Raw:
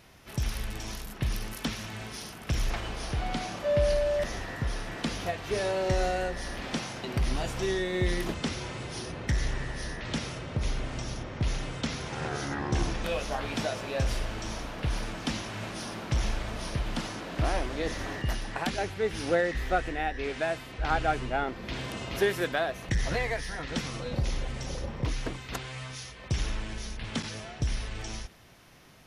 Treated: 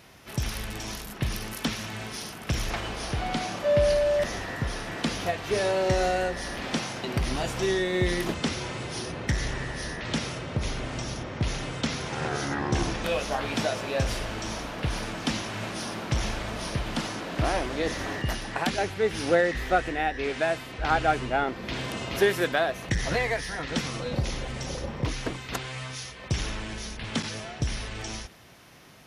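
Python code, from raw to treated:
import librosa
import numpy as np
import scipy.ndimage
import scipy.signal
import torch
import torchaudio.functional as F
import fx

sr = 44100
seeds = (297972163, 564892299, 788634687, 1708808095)

y = fx.highpass(x, sr, hz=85.0, slope=6)
y = F.gain(torch.from_numpy(y), 4.0).numpy()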